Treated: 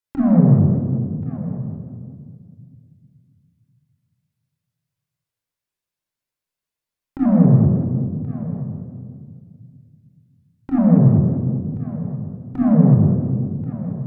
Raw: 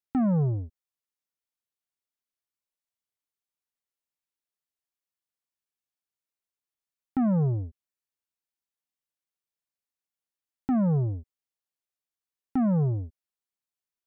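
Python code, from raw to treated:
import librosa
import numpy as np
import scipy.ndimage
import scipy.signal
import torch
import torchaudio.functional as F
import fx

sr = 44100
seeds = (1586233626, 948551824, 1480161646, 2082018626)

p1 = x + fx.echo_single(x, sr, ms=1081, db=-14.5, dry=0)
p2 = fx.dynamic_eq(p1, sr, hz=290.0, q=1.4, threshold_db=-40.0, ratio=4.0, max_db=5)
p3 = fx.room_shoebox(p2, sr, seeds[0], volume_m3=3600.0, walls='mixed', distance_m=5.1)
y = fx.vibrato_shape(p3, sr, shape='saw_up', rate_hz=5.1, depth_cents=100.0)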